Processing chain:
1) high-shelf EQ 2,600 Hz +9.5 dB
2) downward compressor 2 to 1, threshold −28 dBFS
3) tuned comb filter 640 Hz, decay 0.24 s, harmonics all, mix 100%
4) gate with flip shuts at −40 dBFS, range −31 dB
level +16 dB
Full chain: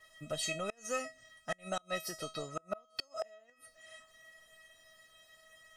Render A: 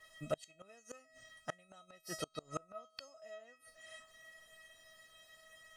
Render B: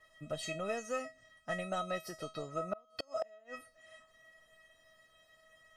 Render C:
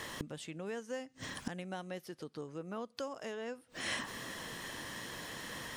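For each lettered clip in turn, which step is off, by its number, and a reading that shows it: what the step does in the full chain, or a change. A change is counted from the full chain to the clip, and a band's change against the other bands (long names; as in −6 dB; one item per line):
2, average gain reduction 4.5 dB
1, 8 kHz band −8.5 dB
3, 250 Hz band +6.0 dB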